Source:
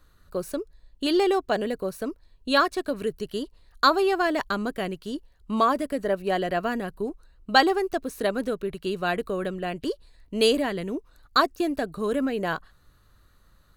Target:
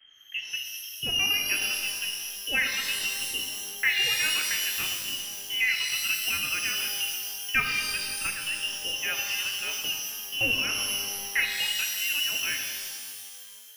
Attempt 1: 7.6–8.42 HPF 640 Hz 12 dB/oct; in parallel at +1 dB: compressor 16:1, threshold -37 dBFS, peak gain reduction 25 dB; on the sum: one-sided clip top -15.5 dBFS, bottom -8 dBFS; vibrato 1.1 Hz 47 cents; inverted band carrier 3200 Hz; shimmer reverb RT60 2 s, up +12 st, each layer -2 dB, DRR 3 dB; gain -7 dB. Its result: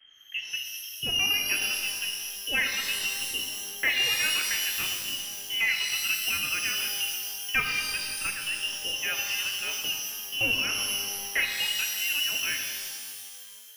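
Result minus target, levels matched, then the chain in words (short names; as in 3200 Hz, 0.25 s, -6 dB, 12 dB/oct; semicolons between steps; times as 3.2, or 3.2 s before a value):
one-sided clip: distortion +8 dB
7.6–8.42 HPF 640 Hz 12 dB/oct; in parallel at +1 dB: compressor 16:1, threshold -37 dBFS, peak gain reduction 25 dB; on the sum: one-sided clip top -8.5 dBFS, bottom -8 dBFS; vibrato 1.1 Hz 47 cents; inverted band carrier 3200 Hz; shimmer reverb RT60 2 s, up +12 st, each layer -2 dB, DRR 3 dB; gain -7 dB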